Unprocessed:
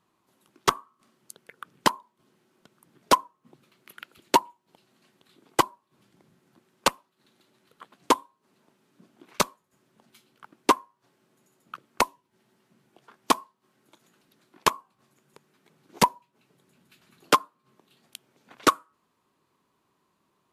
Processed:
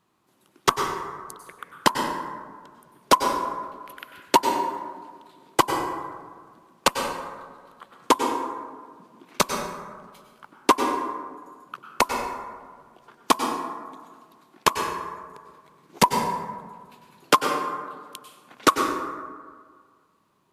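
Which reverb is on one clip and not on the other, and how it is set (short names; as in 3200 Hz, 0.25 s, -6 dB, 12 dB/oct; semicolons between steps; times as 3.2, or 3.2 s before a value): plate-style reverb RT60 1.7 s, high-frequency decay 0.4×, pre-delay 85 ms, DRR 3.5 dB; gain +2 dB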